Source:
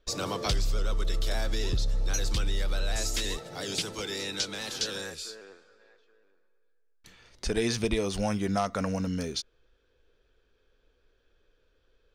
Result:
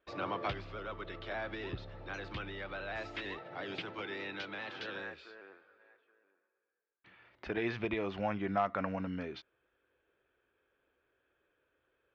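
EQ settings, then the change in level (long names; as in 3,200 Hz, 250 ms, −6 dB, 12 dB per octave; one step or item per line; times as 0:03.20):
loudspeaker in its box 150–2,600 Hz, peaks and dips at 160 Hz −8 dB, 230 Hz −8 dB, 460 Hz −8 dB
−1.5 dB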